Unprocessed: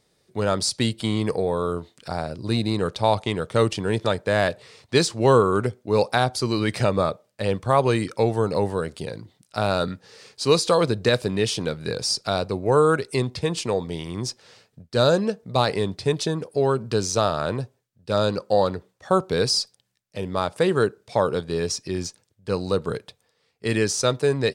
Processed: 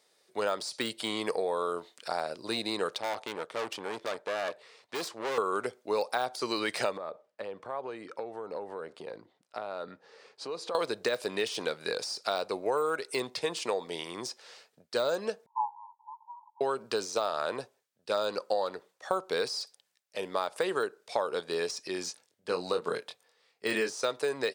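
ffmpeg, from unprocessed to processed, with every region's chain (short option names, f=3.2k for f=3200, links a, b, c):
-filter_complex "[0:a]asettb=1/sr,asplit=3[a][b][c];[a]atrim=end=2.984[d];[b]atrim=start=2.98:end=5.38,asetpts=PTS-STARTPTS,afade=t=in:d=0.004:c=qsin,afade=t=out:st=2.396:d=0.004:c=qsin,highshelf=f=4.2k:g=-8,aeval=exprs='(tanh(20*val(0)+0.75)-tanh(0.75))/20':c=same[e];[c]atrim=start=5.376[f];[d][e]acrossfade=d=0.004:c1=hsin:c2=qsin[g];[g][f]acrossfade=d=0.004:c1=qsin:c2=hsin,asettb=1/sr,asplit=3[h][i][j];[h]atrim=end=6.974[k];[i]atrim=start=6.97:end=10.75,asetpts=PTS-STARTPTS,afade=t=in:d=0.004:c=qsin,afade=t=out:st=3.776:d=0.004:c=qsin,lowpass=f=1k:p=1,acompressor=threshold=-29dB:ratio=6:attack=3.2:release=140:knee=1:detection=peak[l];[j]atrim=start=10.746[m];[k][l]acrossfade=d=0.004:c1=hsin:c2=qsin[n];[n][m]acrossfade=d=0.004:c1=qsin:c2=hsin,asettb=1/sr,asplit=3[o][p][q];[o]atrim=end=15.464[r];[p]atrim=start=15.46:end=16.61,asetpts=PTS-STARTPTS,afade=t=in:d=0.004:c=qsin,afade=t=out:st=1.146:d=0.004:c=qsin,asuperpass=centerf=940:order=20:qfactor=3.8,aecho=1:1:3.3:0.44,atrim=end_sample=50715[s];[q]atrim=start=16.606[t];[r][s]acrossfade=d=0.004:c1=hsin:c2=qsin[u];[u][t]acrossfade=d=0.004:c1=qsin:c2=hsin,asettb=1/sr,asplit=3[v][w][x];[v]atrim=end=22.044[y];[w]atrim=start=22.04:end=23.94,asetpts=PTS-STARTPTS,afade=t=in:d=0.004:c=qsin,afade=t=out:st=1.896:d=0.004:c=qsin,highpass=f=140:p=1,bass=f=250:g=7,treble=f=4k:g=-2,asplit=2[z][aa];[aa]adelay=23,volume=-5dB[ab];[z][ab]amix=inputs=2:normalize=0,atrim=end_sample=83790[ac];[x]atrim=start=23.936[ad];[y][ac]acrossfade=d=0.004:c1=hsin:c2=qsin[ae];[ae][ad]acrossfade=d=0.004:c1=qsin:c2=hsin,deesser=0.7,highpass=500,acompressor=threshold=-26dB:ratio=5"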